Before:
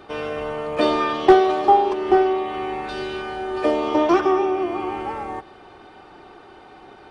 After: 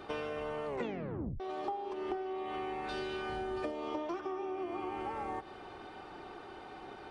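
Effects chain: 3.29–3.72 tone controls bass +8 dB, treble +2 dB; compressor 16:1, threshold -31 dBFS, peak gain reduction 24.5 dB; 0.67 tape stop 0.73 s; gain -3.5 dB

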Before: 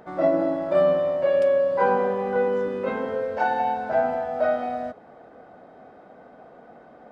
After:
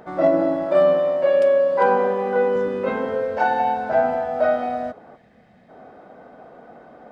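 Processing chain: hard clip -10.5 dBFS, distortion -44 dB; 0.66–2.56 HPF 190 Hz 12 dB/oct; 5.16–5.69 spectral gain 250–1600 Hz -13 dB; gain +3.5 dB

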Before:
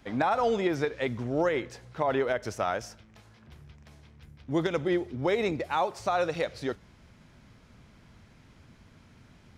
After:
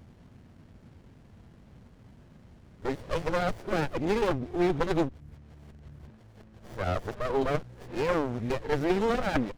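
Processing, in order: whole clip reversed; spectral repair 7.19–7.6, 1200–3400 Hz; running maximum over 33 samples; gain +3 dB

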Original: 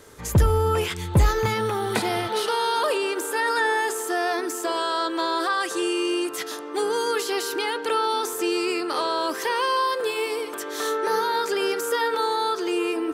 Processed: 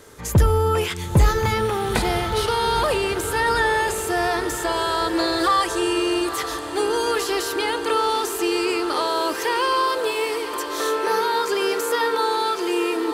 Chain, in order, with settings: 5.13–5.64 comb 3.5 ms, depth 96%; on a send: diffused feedback echo 0.932 s, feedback 66%, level -11 dB; on the sum: gain +2 dB

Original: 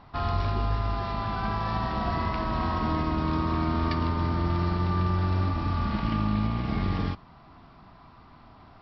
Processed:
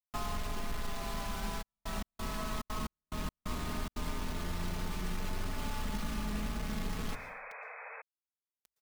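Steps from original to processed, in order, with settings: octaver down 2 oct, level +3 dB; compressor 4:1, threshold -32 dBFS, peak gain reduction 12 dB; resonator 290 Hz, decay 1.1 s, mix 70%; requantised 8-bit, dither none; notches 50/100 Hz; comb 4.7 ms, depth 58%; plate-style reverb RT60 0.53 s, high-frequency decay 0.8×, pre-delay 0.105 s, DRR 13 dB; 1.61–4.1 step gate "x.xx...xx..xxxx" 178 bpm -60 dB; 7.12–8.02 painted sound noise 430–2600 Hz -52 dBFS; gain +5.5 dB

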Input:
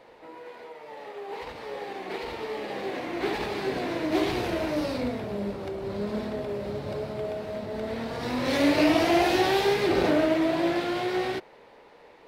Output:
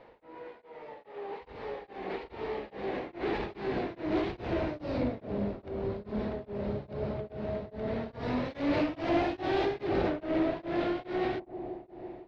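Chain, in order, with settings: in parallel at -1 dB: limiter -18.5 dBFS, peak gain reduction 8 dB; on the sum: low shelf 110 Hz +8 dB; soft clip -15 dBFS, distortion -16 dB; air absorption 210 m; analogue delay 0.166 s, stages 1024, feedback 82%, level -10 dB; beating tremolo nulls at 2.4 Hz; gain -6.5 dB

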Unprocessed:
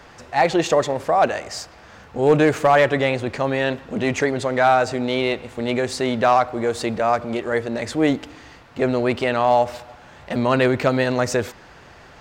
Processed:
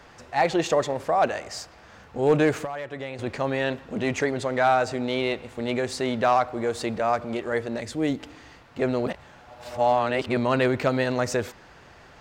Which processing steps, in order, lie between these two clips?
2.57–3.19 compressor 16:1, threshold -25 dBFS, peak gain reduction 15 dB; 7.8–8.2 bell 1100 Hz -6.5 dB 2.7 oct; 9.06–10.37 reverse; gain -4.5 dB

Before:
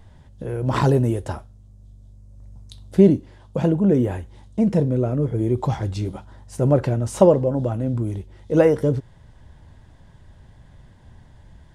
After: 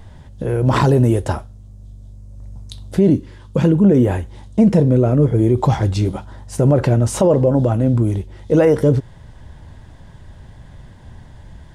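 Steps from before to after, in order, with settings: 3.15–3.85 bell 710 Hz -14 dB 0.42 oct; limiter -13 dBFS, peak gain reduction 11.5 dB; gain +8 dB

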